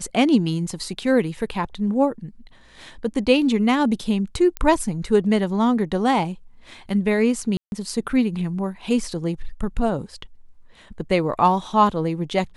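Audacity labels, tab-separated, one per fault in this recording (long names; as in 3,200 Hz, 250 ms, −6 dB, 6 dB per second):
4.570000	4.570000	click −12 dBFS
7.570000	7.720000	drop-out 151 ms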